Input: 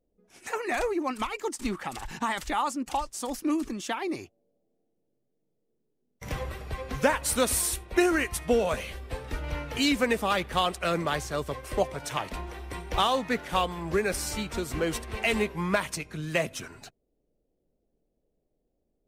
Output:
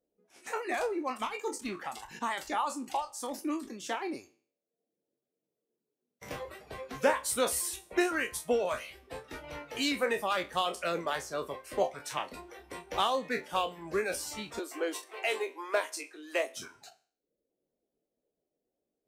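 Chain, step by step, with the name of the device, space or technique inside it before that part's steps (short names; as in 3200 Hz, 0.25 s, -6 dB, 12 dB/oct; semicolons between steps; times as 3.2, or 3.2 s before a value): spectral trails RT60 0.48 s; 14.59–16.57 elliptic high-pass 290 Hz, stop band 40 dB; filter by subtraction (in parallel: LPF 450 Hz 12 dB/oct + phase invert); on the sum: reverb removal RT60 0.74 s; gain -6 dB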